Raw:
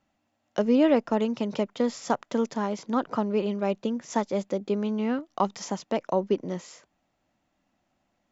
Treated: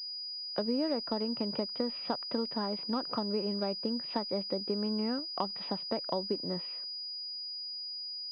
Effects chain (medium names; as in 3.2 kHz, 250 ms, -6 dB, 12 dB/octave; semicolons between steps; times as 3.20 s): compression 5:1, threshold -26 dBFS, peak gain reduction 9.5 dB; class-D stage that switches slowly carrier 4.9 kHz; trim -3 dB